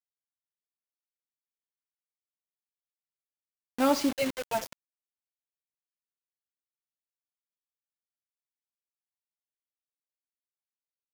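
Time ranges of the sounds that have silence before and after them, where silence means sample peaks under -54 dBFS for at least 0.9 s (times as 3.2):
3.78–4.73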